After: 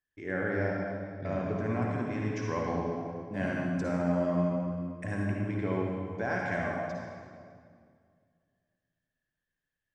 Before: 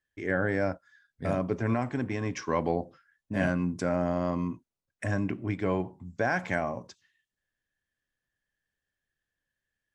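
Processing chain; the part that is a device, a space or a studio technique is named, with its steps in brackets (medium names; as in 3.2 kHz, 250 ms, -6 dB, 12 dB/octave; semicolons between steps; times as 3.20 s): 0.49–1.53 s: steep low-pass 6.7 kHz 36 dB/octave; swimming-pool hall (reverberation RT60 2.1 s, pre-delay 49 ms, DRR -2 dB; treble shelf 5.3 kHz -6 dB); trim -6 dB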